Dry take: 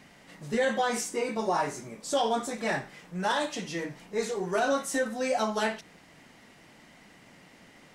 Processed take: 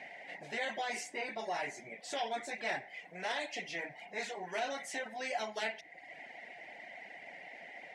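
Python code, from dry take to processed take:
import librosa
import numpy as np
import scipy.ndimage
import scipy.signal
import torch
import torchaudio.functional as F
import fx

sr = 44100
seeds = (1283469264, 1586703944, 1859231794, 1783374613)

y = fx.double_bandpass(x, sr, hz=1200.0, octaves=1.5)
y = fx.dereverb_blind(y, sr, rt60_s=0.69)
y = fx.spectral_comp(y, sr, ratio=2.0)
y = y * 10.0 ** (-1.5 / 20.0)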